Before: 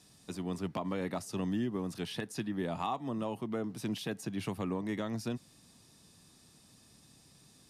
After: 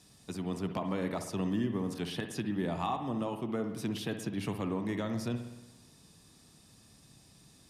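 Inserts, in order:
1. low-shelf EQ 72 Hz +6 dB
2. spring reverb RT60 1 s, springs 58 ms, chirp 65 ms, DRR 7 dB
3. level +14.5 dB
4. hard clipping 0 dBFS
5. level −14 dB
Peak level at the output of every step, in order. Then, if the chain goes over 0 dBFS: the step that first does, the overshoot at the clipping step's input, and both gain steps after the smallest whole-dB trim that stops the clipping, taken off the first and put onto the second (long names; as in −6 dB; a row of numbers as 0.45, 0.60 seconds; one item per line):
−21.5, −20.5, −6.0, −6.0, −20.0 dBFS
no step passes full scale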